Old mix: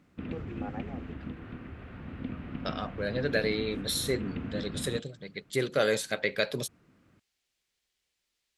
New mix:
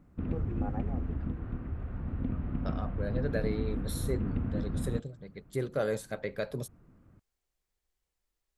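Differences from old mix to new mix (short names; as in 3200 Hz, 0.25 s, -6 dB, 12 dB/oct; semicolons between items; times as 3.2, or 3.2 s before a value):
second voice -4.5 dB; master: remove weighting filter D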